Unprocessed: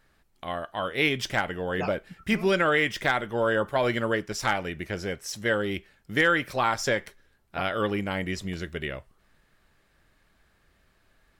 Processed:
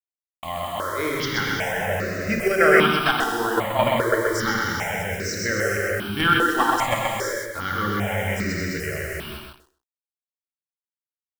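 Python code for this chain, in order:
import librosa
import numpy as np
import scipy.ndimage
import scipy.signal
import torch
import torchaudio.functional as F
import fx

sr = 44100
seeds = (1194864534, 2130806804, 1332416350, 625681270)

p1 = fx.peak_eq(x, sr, hz=8500.0, db=5.0, octaves=0.77)
p2 = fx.notch(p1, sr, hz=3500.0, q=19.0)
p3 = fx.rev_gated(p2, sr, seeds[0], gate_ms=490, shape='flat', drr_db=-1.5)
p4 = fx.level_steps(p3, sr, step_db=20)
p5 = p3 + F.gain(torch.from_numpy(p4), 2.0).numpy()
p6 = fx.hum_notches(p5, sr, base_hz=60, count=9)
p7 = fx.quant_dither(p6, sr, seeds[1], bits=6, dither='none')
p8 = p7 + fx.echo_feedback(p7, sr, ms=128, feedback_pct=16, wet_db=-3.5, dry=0)
y = fx.phaser_held(p8, sr, hz=2.5, low_hz=580.0, high_hz=3200.0)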